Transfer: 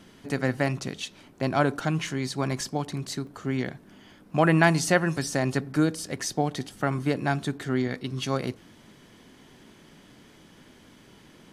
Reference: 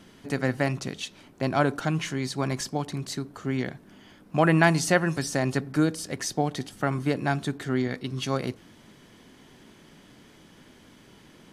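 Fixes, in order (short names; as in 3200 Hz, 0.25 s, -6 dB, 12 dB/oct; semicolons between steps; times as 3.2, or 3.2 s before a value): interpolate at 2.07/3.27/6.73, 1.9 ms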